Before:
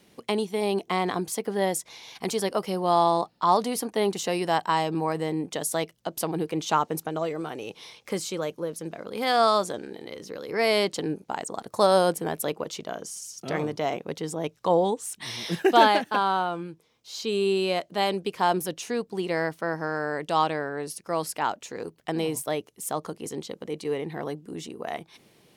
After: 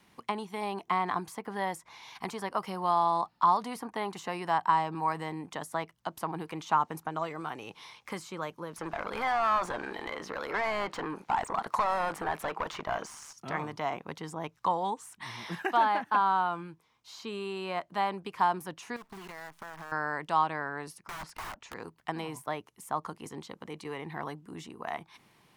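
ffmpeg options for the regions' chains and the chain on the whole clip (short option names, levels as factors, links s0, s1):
-filter_complex "[0:a]asettb=1/sr,asplit=3[s0][s1][s2];[s0]atrim=end=8.764[s3];[s1]atrim=start=8.76:end=13.33,asetpts=PTS-STARTPTS,afade=t=in:d=0.004:c=qsin,afade=t=out:st=4.566:d=0.004:c=qsin,tremolo=f=150:d=0.519,acompressor=threshold=0.0398:ratio=3:attack=3.2:release=140:knee=1:detection=peak,asplit=2[s4][s5];[s5]highpass=f=720:p=1,volume=15.8,asoftclip=type=tanh:threshold=0.15[s6];[s4][s6]amix=inputs=2:normalize=0,lowpass=f=3500:p=1,volume=0.501[s7];[s2]atrim=start=13.326[s8];[s3][s7]acrossfade=d=0.004:c1=hsin:c2=qsin[s9];[s9][s8]acrossfade=d=0.004:c1=qsin:c2=hsin,asettb=1/sr,asplit=3[s10][s11][s12];[s10]atrim=end=18.964[s13];[s11]atrim=start=18.96:end=19.92,asetpts=PTS-STARTPTS,afade=t=in:d=0.004:c=qsin,afade=t=out:st=0.956:d=0.004:c=qsin,aecho=1:1:4.7:0.4,atrim=end_sample=42336,acompressor=threshold=0.0158:ratio=10:attack=3.2:release=140:knee=1:detection=peak,acrusher=bits=8:dc=4:mix=0:aa=0.000001[s14];[s12]atrim=start=19.916[s15];[s13][s14]acrossfade=d=0.004:c1=hsin:c2=qsin[s16];[s16][s15]acrossfade=d=0.004:c1=qsin:c2=hsin,asettb=1/sr,asplit=3[s17][s18][s19];[s17]atrim=end=21.064[s20];[s18]atrim=start=21.06:end=21.74,asetpts=PTS-STARTPTS,afade=t=in:d=0.004:c=qsin,afade=t=out:st=0.676:d=0.004:c=qsin,lowpass=5800,aeval=exprs='(mod(33.5*val(0)+1,2)-1)/33.5':c=same,asubboost=boost=12:cutoff=78[s21];[s19]atrim=start=21.736[s22];[s20][s21]acrossfade=d=0.004:c1=hsin:c2=qsin[s23];[s23][s22]acrossfade=d=0.004:c1=qsin:c2=hsin,lowshelf=f=140:g=5,acrossover=split=610|2000[s24][s25][s26];[s24]acompressor=threshold=0.0398:ratio=4[s27];[s25]acompressor=threshold=0.0562:ratio=4[s28];[s26]acompressor=threshold=0.00794:ratio=4[s29];[s27][s28][s29]amix=inputs=3:normalize=0,equalizer=f=500:t=o:w=1:g=-7,equalizer=f=1000:t=o:w=1:g=11,equalizer=f=2000:t=o:w=1:g=4,volume=0.473"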